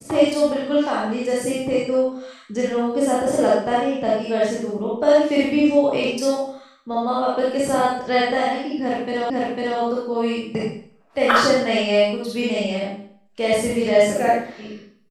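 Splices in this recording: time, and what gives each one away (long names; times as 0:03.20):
0:09.30: the same again, the last 0.5 s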